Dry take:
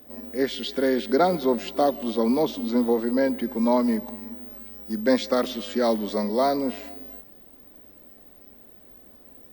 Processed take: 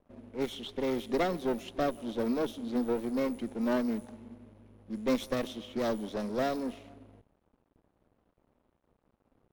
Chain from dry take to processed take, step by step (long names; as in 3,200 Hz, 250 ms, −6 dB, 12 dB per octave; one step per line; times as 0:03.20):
lower of the sound and its delayed copy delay 0.31 ms
low-pass that shuts in the quiet parts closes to 1,600 Hz, open at −20 dBFS
dead-zone distortion −53.5 dBFS
level −8 dB